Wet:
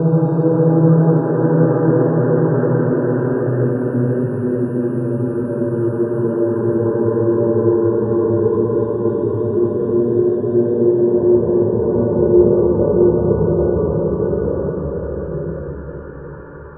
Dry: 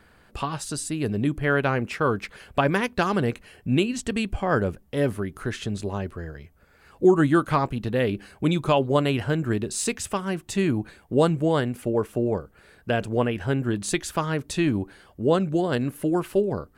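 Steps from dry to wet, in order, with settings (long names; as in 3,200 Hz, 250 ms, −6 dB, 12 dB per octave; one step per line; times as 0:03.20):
reversed playback
downward compressor 4 to 1, threshold −35 dBFS, peak gain reduction 19 dB
reversed playback
echo through a band-pass that steps 286 ms, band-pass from 1,400 Hz, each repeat 0.7 octaves, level −7 dB
spectral peaks only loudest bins 32
extreme stretch with random phases 14×, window 0.50 s, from 0:11.42
convolution reverb RT60 0.60 s, pre-delay 3 ms, DRR 4 dB
level +4.5 dB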